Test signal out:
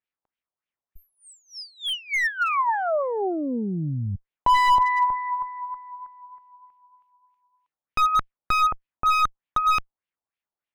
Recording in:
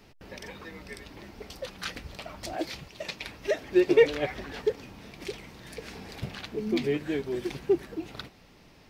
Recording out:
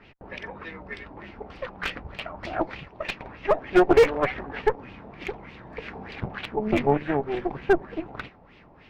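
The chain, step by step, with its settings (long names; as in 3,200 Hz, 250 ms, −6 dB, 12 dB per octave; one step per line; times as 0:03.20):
harmonic generator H 4 −31 dB, 7 −38 dB, 8 −17 dB, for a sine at −8.5 dBFS
auto-filter low-pass sine 3.3 Hz 790–2,900 Hz
slew-rate limiting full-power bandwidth 130 Hz
level +3 dB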